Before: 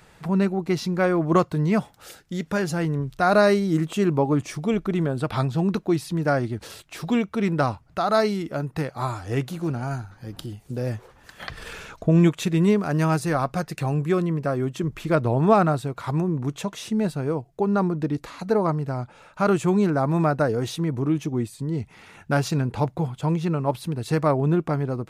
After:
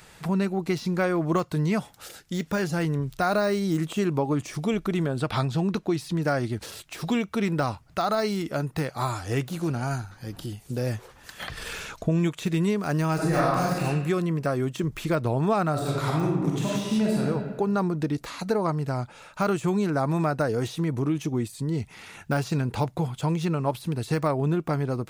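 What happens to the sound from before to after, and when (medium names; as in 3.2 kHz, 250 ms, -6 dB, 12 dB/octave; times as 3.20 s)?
5.08–6.22 s: treble shelf 9.7 kHz -9 dB
13.14–13.79 s: reverb throw, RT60 1 s, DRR -7.5 dB
15.72–17.21 s: reverb throw, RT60 1.3 s, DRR -3 dB
whole clip: compression 3:1, threshold -22 dBFS; treble shelf 2.4 kHz +8 dB; de-esser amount 80%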